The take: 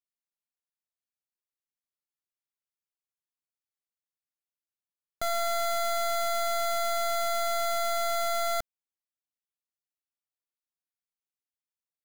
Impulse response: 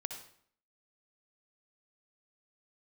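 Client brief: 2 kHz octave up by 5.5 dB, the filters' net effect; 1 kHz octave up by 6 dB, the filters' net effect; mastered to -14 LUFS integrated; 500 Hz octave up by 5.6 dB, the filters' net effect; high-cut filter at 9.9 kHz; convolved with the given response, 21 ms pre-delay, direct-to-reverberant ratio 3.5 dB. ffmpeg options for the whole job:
-filter_complex "[0:a]lowpass=9900,equalizer=f=500:t=o:g=3.5,equalizer=f=1000:t=o:g=7.5,equalizer=f=2000:t=o:g=4,asplit=2[s0][s1];[1:a]atrim=start_sample=2205,adelay=21[s2];[s1][s2]afir=irnorm=-1:irlink=0,volume=0.708[s3];[s0][s3]amix=inputs=2:normalize=0,volume=2.99"

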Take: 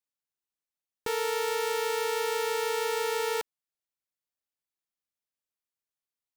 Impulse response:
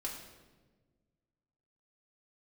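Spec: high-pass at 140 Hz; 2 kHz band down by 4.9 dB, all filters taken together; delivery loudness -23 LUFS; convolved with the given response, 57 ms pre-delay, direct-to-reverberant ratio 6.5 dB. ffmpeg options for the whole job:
-filter_complex "[0:a]highpass=140,equalizer=f=2000:t=o:g=-6,asplit=2[s0][s1];[1:a]atrim=start_sample=2205,adelay=57[s2];[s1][s2]afir=irnorm=-1:irlink=0,volume=0.473[s3];[s0][s3]amix=inputs=2:normalize=0,volume=2.51"

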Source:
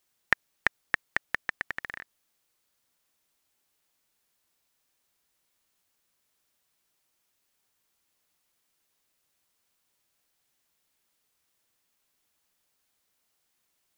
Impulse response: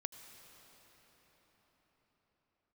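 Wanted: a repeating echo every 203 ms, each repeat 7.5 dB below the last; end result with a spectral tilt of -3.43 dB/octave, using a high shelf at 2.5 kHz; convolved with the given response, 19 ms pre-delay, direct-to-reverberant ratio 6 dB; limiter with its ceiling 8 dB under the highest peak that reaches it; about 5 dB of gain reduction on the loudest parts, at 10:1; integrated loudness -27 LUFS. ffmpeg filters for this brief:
-filter_complex "[0:a]highshelf=f=2500:g=-6.5,acompressor=threshold=0.0501:ratio=10,alimiter=limit=0.188:level=0:latency=1,aecho=1:1:203|406|609|812|1015:0.422|0.177|0.0744|0.0312|0.0131,asplit=2[s0][s1];[1:a]atrim=start_sample=2205,adelay=19[s2];[s1][s2]afir=irnorm=-1:irlink=0,volume=0.668[s3];[s0][s3]amix=inputs=2:normalize=0,volume=4.73"

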